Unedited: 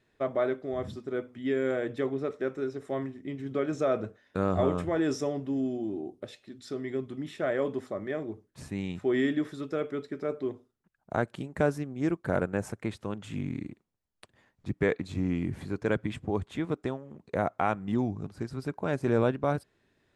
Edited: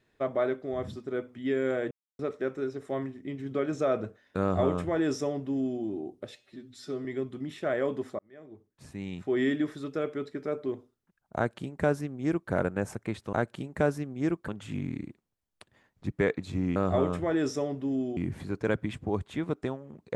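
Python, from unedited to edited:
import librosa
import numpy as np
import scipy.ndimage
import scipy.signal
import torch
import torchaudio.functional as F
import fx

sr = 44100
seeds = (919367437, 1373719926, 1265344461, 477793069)

y = fx.edit(x, sr, fx.silence(start_s=1.91, length_s=0.28),
    fx.duplicate(start_s=4.41, length_s=1.41, to_s=15.38),
    fx.stretch_span(start_s=6.36, length_s=0.46, factor=1.5),
    fx.fade_in_span(start_s=7.96, length_s=1.28),
    fx.duplicate(start_s=11.13, length_s=1.15, to_s=13.1), tone=tone)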